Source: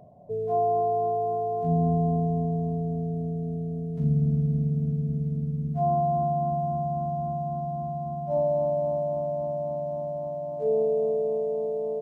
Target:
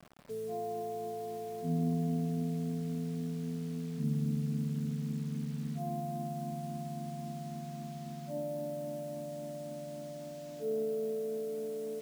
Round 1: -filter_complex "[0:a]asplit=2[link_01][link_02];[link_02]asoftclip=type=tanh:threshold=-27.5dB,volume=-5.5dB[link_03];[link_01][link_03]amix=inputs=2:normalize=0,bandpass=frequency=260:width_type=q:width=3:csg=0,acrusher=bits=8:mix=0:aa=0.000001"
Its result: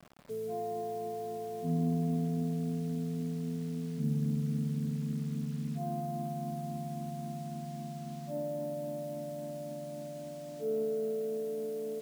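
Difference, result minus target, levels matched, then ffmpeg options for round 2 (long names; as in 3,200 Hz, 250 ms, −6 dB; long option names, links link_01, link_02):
soft clipping: distortion −5 dB
-filter_complex "[0:a]asplit=2[link_01][link_02];[link_02]asoftclip=type=tanh:threshold=-36.5dB,volume=-5.5dB[link_03];[link_01][link_03]amix=inputs=2:normalize=0,bandpass=frequency=260:width_type=q:width=3:csg=0,acrusher=bits=8:mix=0:aa=0.000001"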